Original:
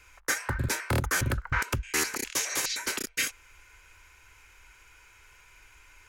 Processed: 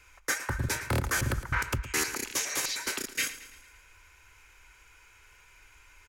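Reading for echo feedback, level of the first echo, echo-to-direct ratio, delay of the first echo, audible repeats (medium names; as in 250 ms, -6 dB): 53%, -14.5 dB, -13.0 dB, 112 ms, 4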